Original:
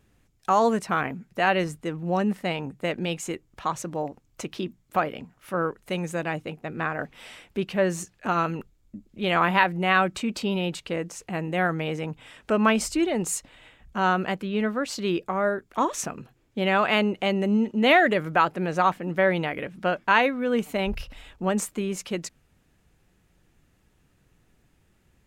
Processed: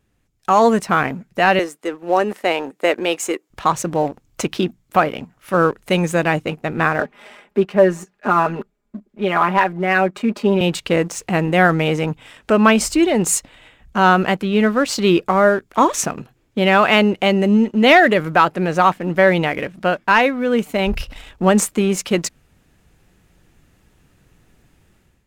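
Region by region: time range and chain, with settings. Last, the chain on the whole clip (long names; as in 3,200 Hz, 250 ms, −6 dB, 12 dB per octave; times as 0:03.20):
0:01.59–0:03.50: high-pass filter 310 Hz 24 dB per octave + dynamic equaliser 3,600 Hz, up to −4 dB, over −48 dBFS, Q 1.1
0:07.00–0:10.61: three-way crossover with the lows and the highs turned down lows −19 dB, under 200 Hz, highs −13 dB, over 2,000 Hz + comb filter 4.9 ms, depth 76%
whole clip: leveller curve on the samples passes 1; automatic gain control; level −1 dB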